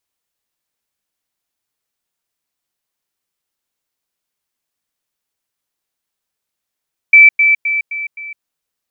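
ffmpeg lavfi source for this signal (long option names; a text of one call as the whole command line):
ffmpeg -f lavfi -i "aevalsrc='pow(10,(-1.5-6*floor(t/0.26))/20)*sin(2*PI*2320*t)*clip(min(mod(t,0.26),0.16-mod(t,0.26))/0.005,0,1)':duration=1.3:sample_rate=44100" out.wav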